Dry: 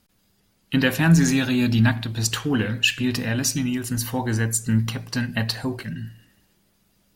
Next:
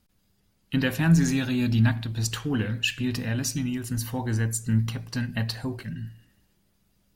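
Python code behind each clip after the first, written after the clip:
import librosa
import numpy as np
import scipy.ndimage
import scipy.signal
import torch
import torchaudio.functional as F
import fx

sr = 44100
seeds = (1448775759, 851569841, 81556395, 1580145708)

y = fx.low_shelf(x, sr, hz=140.0, db=8.0)
y = y * 10.0 ** (-6.5 / 20.0)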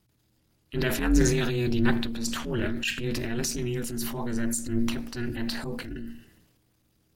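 y = fx.transient(x, sr, attack_db=-8, sustain_db=7)
y = y * np.sin(2.0 * np.pi * 120.0 * np.arange(len(y)) / sr)
y = y * 10.0 ** (2.0 / 20.0)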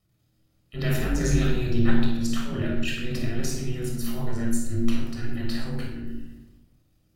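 y = fx.room_shoebox(x, sr, seeds[0], volume_m3=3000.0, walls='furnished', distance_m=6.3)
y = y * 10.0 ** (-7.0 / 20.0)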